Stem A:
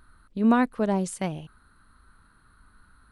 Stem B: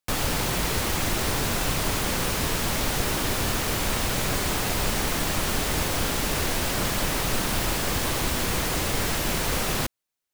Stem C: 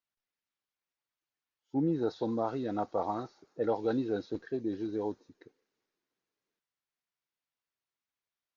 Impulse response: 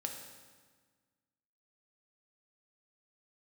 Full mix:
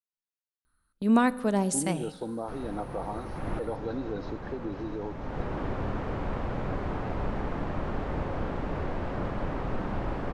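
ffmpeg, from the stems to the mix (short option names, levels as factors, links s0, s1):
-filter_complex "[0:a]aemphasis=mode=production:type=50kf,adelay=650,volume=0.668,asplit=2[s0][s1];[s1]volume=0.316[s2];[1:a]lowpass=1100,adelay=2400,volume=0.531,asplit=2[s3][s4];[s4]volume=0.316[s5];[2:a]acompressor=threshold=0.01:ratio=2,volume=1.26,asplit=3[s6][s7][s8];[s7]volume=0.237[s9];[s8]apad=whole_len=561512[s10];[s3][s10]sidechaincompress=threshold=0.00447:ratio=8:attack=16:release=334[s11];[3:a]atrim=start_sample=2205[s12];[s2][s5][s9]amix=inputs=3:normalize=0[s13];[s13][s12]afir=irnorm=-1:irlink=0[s14];[s0][s11][s6][s14]amix=inputs=4:normalize=0,agate=range=0.141:threshold=0.00631:ratio=16:detection=peak"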